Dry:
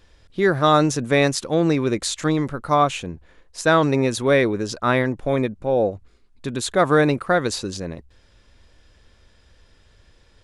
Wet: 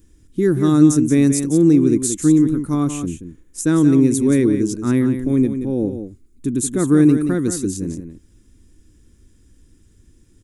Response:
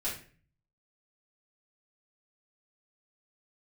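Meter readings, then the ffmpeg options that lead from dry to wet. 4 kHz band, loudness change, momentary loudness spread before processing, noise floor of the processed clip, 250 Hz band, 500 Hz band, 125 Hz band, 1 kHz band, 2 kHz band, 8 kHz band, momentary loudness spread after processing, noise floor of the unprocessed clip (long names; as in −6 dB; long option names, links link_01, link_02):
can't be measured, +3.5 dB, 13 LU, −54 dBFS, +9.5 dB, −2.5 dB, +4.5 dB, −13.0 dB, −10.5 dB, +6.0 dB, 14 LU, −56 dBFS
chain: -filter_complex "[0:a]lowshelf=frequency=440:width_type=q:width=3:gain=12.5,aexciter=amount=10:drive=3.9:freq=6400,asplit=2[link_01][link_02];[link_02]aecho=0:1:178:0.355[link_03];[link_01][link_03]amix=inputs=2:normalize=0,volume=-10dB"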